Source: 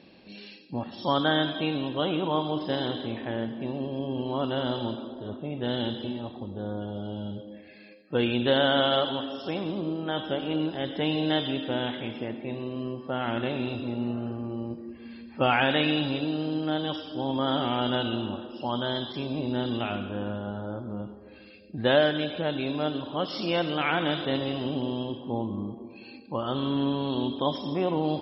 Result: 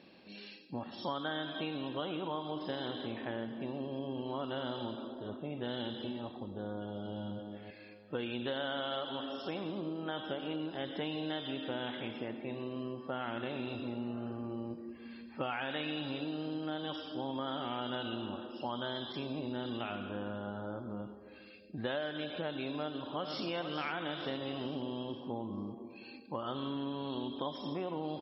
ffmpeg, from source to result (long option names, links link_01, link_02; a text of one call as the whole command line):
ffmpeg -i in.wav -filter_complex "[0:a]asplit=2[link_01][link_02];[link_02]afade=type=in:start_time=6.47:duration=0.01,afade=type=out:start_time=7.13:duration=0.01,aecho=0:1:570|1140|1710:0.398107|0.0995268|0.0248817[link_03];[link_01][link_03]amix=inputs=2:normalize=0,asplit=2[link_04][link_05];[link_05]afade=type=in:start_time=22.78:duration=0.01,afade=type=out:start_time=23.47:duration=0.01,aecho=0:1:450|900|1350|1800|2250:0.398107|0.159243|0.0636971|0.0254789|0.0101915[link_06];[link_04][link_06]amix=inputs=2:normalize=0,equalizer=frequency=1300:width=1.6:gain=3,acompressor=threshold=-29dB:ratio=6,lowshelf=frequency=88:gain=-9.5,volume=-4.5dB" out.wav